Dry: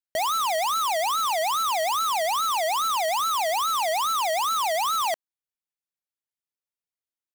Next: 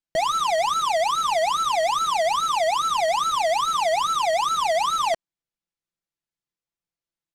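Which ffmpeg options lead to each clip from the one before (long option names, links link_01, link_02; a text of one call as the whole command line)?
ffmpeg -i in.wav -af "lowpass=7600,lowshelf=frequency=340:gain=10,aecho=1:1:5.9:0.59" out.wav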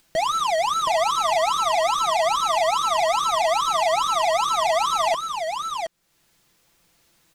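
ffmpeg -i in.wav -af "acompressor=mode=upward:threshold=-40dB:ratio=2.5,aecho=1:1:721:0.531" out.wav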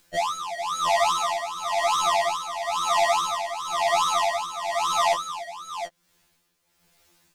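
ffmpeg -i in.wav -af "tremolo=f=0.99:d=0.71,afftfilt=real='re*2*eq(mod(b,4),0)':imag='im*2*eq(mod(b,4),0)':win_size=2048:overlap=0.75,volume=3dB" out.wav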